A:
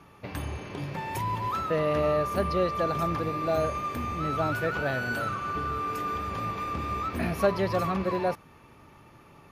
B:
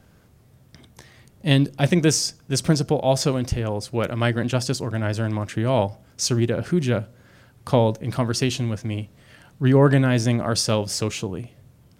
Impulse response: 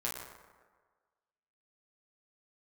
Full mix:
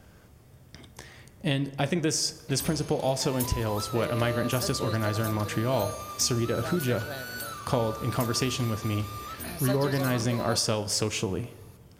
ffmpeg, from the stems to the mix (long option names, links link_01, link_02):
-filter_complex "[0:a]highshelf=frequency=3900:gain=7,aexciter=amount=2.6:drive=7.5:freq=3500,adelay=2250,volume=-9dB[link_01];[1:a]bandreject=frequency=4000:width=17,acompressor=threshold=-24dB:ratio=6,volume=0.5dB,asplit=2[link_02][link_03];[link_03]volume=-13dB[link_04];[2:a]atrim=start_sample=2205[link_05];[link_04][link_05]afir=irnorm=-1:irlink=0[link_06];[link_01][link_02][link_06]amix=inputs=3:normalize=0,equalizer=frequency=170:width_type=o:width=0.98:gain=-3.5"